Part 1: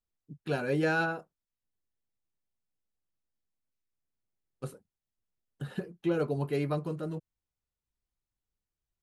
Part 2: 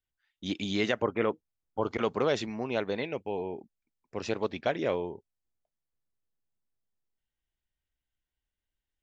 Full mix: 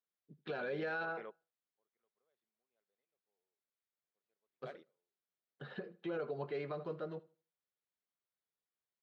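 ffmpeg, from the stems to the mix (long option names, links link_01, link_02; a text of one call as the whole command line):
ffmpeg -i stem1.wav -i stem2.wav -filter_complex "[0:a]volume=-1dB,asplit=3[link_01][link_02][link_03];[link_02]volume=-20.5dB[link_04];[1:a]volume=-19dB[link_05];[link_03]apad=whole_len=398125[link_06];[link_05][link_06]sidechaingate=range=-38dB:threshold=-52dB:ratio=16:detection=peak[link_07];[link_04]aecho=0:1:78|156|234|312:1|0.26|0.0676|0.0176[link_08];[link_01][link_07][link_08]amix=inputs=3:normalize=0,highpass=290,equalizer=frequency=290:width_type=q:width=4:gain=-10,equalizer=frequency=900:width_type=q:width=4:gain=-4,equalizer=frequency=2700:width_type=q:width=4:gain=-6,lowpass=frequency=3900:width=0.5412,lowpass=frequency=3900:width=1.3066,alimiter=level_in=7.5dB:limit=-24dB:level=0:latency=1:release=65,volume=-7.5dB" out.wav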